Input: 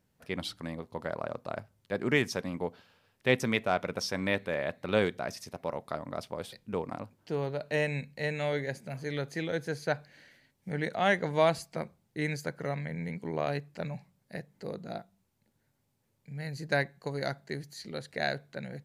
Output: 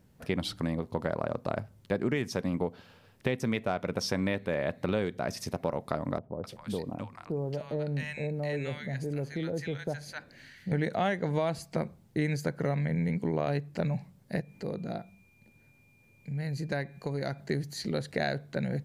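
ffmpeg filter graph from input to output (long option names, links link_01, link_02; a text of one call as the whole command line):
ffmpeg -i in.wav -filter_complex "[0:a]asettb=1/sr,asplit=3[link_01][link_02][link_03];[link_01]atrim=end=6.184[link_04];[link_02]atrim=start=6.18:end=10.72,asetpts=PTS-STARTPTS,afade=type=in:duration=0.004:curve=qsin,afade=type=out:start_time=4.536:duration=0.004:curve=qsin,acompressor=threshold=-55dB:ratio=1.5:attack=3.2:release=140:knee=1:detection=peak,acrossover=split=970[link_05][link_06];[link_06]adelay=260[link_07];[link_05][link_07]amix=inputs=2:normalize=0,atrim=end_sample=200214[link_08];[link_03]atrim=start=10.716[link_09];[link_04][link_08]acrossfade=duration=0.004:curve1=hsin:curve2=qsin[link_10];[link_10][link_09]acrossfade=duration=0.004:curve1=qsin:curve2=hsin,asettb=1/sr,asplit=3[link_11][link_12][link_13];[link_11]atrim=end=14.404[link_14];[link_12]atrim=start=14.4:end=17.4,asetpts=PTS-STARTPTS,afade=type=in:duration=0.004:curve=qsin,afade=type=out:start_time=2.996:duration=0.004:curve=qsin,acompressor=threshold=-54dB:ratio=1.5:attack=3.2:release=140:knee=1:detection=peak,aeval=exprs='val(0)+0.000316*sin(2*PI*2400*n/s)':channel_layout=same[link_15];[link_13]atrim=start=17.396[link_16];[link_14][link_15]acrossfade=duration=0.004:curve1=hsin:curve2=qsin[link_17];[link_17][link_16]acrossfade=duration=0.004:curve1=qsin:curve2=hsin,lowshelf=frequency=500:gain=7.5,alimiter=limit=-15.5dB:level=0:latency=1:release=484,acompressor=threshold=-34dB:ratio=3,volume=6dB" out.wav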